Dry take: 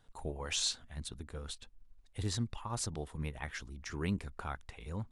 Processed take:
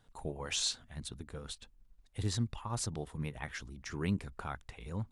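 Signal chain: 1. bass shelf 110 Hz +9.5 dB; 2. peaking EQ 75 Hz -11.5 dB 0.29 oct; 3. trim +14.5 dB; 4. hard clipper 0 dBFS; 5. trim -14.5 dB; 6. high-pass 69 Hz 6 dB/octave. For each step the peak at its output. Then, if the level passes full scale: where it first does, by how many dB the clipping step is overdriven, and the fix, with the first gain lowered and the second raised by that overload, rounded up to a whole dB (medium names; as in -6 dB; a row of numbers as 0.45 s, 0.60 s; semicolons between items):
-19.5 dBFS, -19.5 dBFS, -5.0 dBFS, -5.0 dBFS, -19.5 dBFS, -20.0 dBFS; nothing clips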